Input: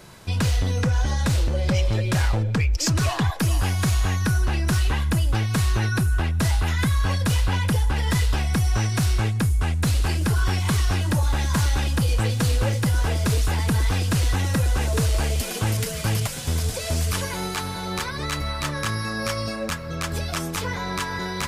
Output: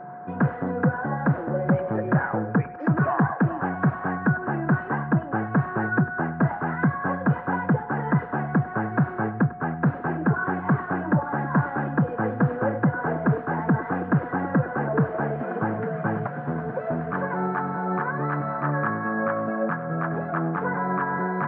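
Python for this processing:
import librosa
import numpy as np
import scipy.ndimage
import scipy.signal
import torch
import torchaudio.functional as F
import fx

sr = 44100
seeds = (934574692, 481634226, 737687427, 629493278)

y = scipy.signal.sosfilt(scipy.signal.cheby1(4, 1.0, [140.0, 1600.0], 'bandpass', fs=sr, output='sos'), x)
y = y + 10.0 ** (-42.0 / 20.0) * np.sin(2.0 * np.pi * 720.0 * np.arange(len(y)) / sr)
y = fx.echo_thinned(y, sr, ms=99, feedback_pct=62, hz=690.0, wet_db=-14)
y = F.gain(torch.from_numpy(y), 4.5).numpy()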